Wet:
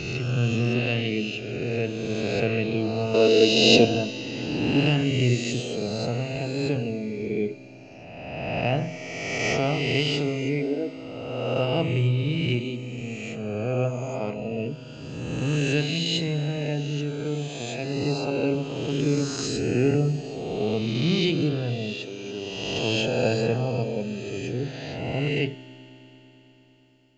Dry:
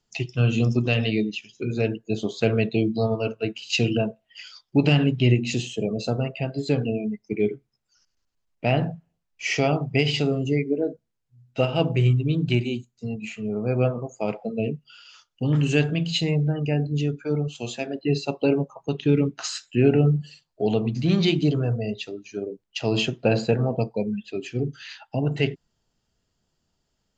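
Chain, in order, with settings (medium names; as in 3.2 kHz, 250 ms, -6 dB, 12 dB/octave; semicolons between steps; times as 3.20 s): reverse spectral sustain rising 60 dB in 1.84 s; 3.14–3.85 s: graphic EQ 125/250/500/1000/4000 Hz -5/+9/+11/+7/+10 dB; reverberation RT60 4.7 s, pre-delay 3 ms, DRR 12 dB; trim -5.5 dB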